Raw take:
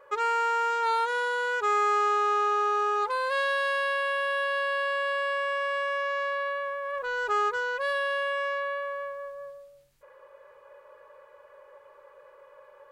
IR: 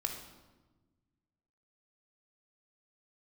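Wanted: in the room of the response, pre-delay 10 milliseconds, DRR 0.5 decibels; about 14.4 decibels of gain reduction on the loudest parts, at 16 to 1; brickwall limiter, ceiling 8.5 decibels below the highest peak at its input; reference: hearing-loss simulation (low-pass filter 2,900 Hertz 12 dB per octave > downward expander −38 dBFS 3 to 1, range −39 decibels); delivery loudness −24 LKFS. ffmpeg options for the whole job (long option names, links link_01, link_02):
-filter_complex "[0:a]acompressor=threshold=-36dB:ratio=16,alimiter=level_in=10dB:limit=-24dB:level=0:latency=1,volume=-10dB,asplit=2[link_01][link_02];[1:a]atrim=start_sample=2205,adelay=10[link_03];[link_02][link_03]afir=irnorm=-1:irlink=0,volume=-2.5dB[link_04];[link_01][link_04]amix=inputs=2:normalize=0,lowpass=2900,agate=range=-39dB:threshold=-38dB:ratio=3,volume=14dB"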